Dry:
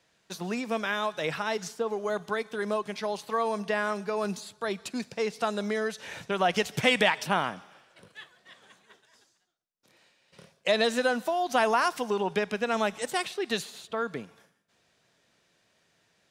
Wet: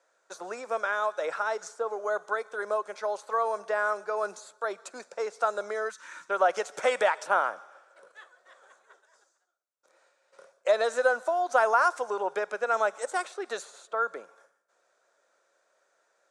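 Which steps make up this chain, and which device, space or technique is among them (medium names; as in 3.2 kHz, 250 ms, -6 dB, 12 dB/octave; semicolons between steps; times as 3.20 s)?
time-frequency box 5.89–6.30 s, 350–900 Hz -19 dB; phone speaker on a table (cabinet simulation 350–8300 Hz, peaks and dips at 550 Hz +10 dB, 1.4 kHz +9 dB, 2.9 kHz -9 dB, 5.1 kHz -4 dB); graphic EQ 250/500/2000/4000 Hz -8/-5/-7/-9 dB; trim +2.5 dB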